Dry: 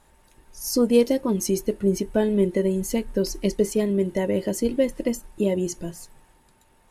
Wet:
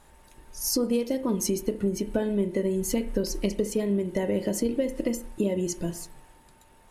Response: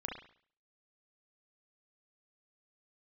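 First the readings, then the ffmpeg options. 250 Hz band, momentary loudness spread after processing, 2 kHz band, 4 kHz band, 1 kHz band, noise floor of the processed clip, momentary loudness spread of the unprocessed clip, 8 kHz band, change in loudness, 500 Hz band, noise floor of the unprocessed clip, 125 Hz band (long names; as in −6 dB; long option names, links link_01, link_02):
−3.5 dB, 5 LU, −4.0 dB, −1.5 dB, −4.0 dB, −56 dBFS, 9 LU, −0.5 dB, −4.0 dB, −5.0 dB, −59 dBFS, −3.5 dB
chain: -filter_complex "[0:a]acompressor=threshold=-25dB:ratio=6,asplit=2[link_01][link_02];[1:a]atrim=start_sample=2205[link_03];[link_02][link_03]afir=irnorm=-1:irlink=0,volume=-7dB[link_04];[link_01][link_04]amix=inputs=2:normalize=0"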